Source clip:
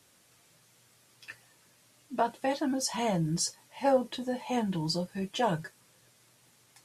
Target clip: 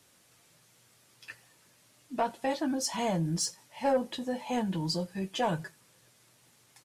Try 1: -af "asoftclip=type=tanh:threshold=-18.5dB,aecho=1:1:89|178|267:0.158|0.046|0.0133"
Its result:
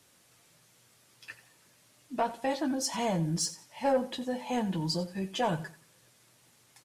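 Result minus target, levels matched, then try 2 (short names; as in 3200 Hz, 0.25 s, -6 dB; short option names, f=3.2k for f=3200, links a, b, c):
echo-to-direct +11.5 dB
-af "asoftclip=type=tanh:threshold=-18.5dB,aecho=1:1:89|178:0.0422|0.0122"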